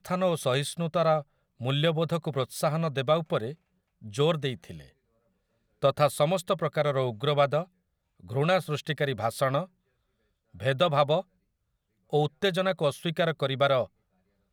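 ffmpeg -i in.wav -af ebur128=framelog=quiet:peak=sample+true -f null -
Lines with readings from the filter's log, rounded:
Integrated loudness:
  I:         -27.5 LUFS
  Threshold: -38.0 LUFS
Loudness range:
  LRA:         2.9 LU
  Threshold: -48.9 LUFS
  LRA low:   -30.5 LUFS
  LRA high:  -27.6 LUFS
Sample peak:
  Peak:       -9.1 dBFS
True peak:
  Peak:       -9.1 dBFS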